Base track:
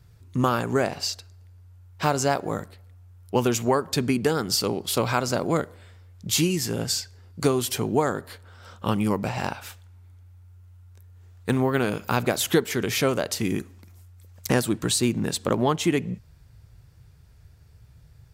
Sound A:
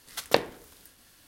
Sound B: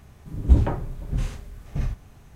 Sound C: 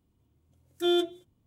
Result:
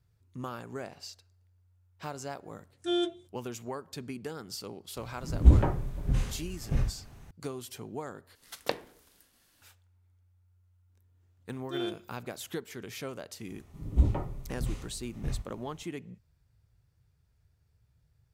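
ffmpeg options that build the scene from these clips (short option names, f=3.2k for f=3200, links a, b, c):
-filter_complex "[3:a]asplit=2[a][b];[2:a]asplit=2[c][d];[0:a]volume=-16.5dB[e];[a]aresample=22050,aresample=44100[f];[b]lowpass=7.1k[g];[d]asuperstop=centerf=1600:order=4:qfactor=6.6[h];[e]asplit=2[i][j];[i]atrim=end=8.354[k];[1:a]atrim=end=1.27,asetpts=PTS-STARTPTS,volume=-9dB[l];[j]atrim=start=9.616[m];[f]atrim=end=1.46,asetpts=PTS-STARTPTS,volume=-4dB,afade=t=in:d=0.004:c=hsin,afade=t=out:st=1.456:d=0.004:c=hsin,adelay=2040[n];[c]atrim=end=2.35,asetpts=PTS-STARTPTS,volume=-1.5dB,afade=t=in:d=0.004:c=hsin,afade=t=out:st=2.346:d=0.004:c=hsin,adelay=4960[o];[g]atrim=end=1.46,asetpts=PTS-STARTPTS,volume=-10dB,afade=t=in:d=0.004:c=hsin,afade=t=out:st=1.456:d=0.004:c=hsin,adelay=10890[p];[h]atrim=end=2.35,asetpts=PTS-STARTPTS,volume=-7.5dB,afade=t=in:d=0.004:c=hsin,afade=t=out:st=2.346:d=0.004:c=hsin,adelay=594468S[q];[k][l]acrossfade=d=0.004:c1=hsin:c2=hsin[r];[r][m]acrossfade=d=0.004:c1=hsin:c2=hsin[s];[s][n][o][p][q]amix=inputs=5:normalize=0"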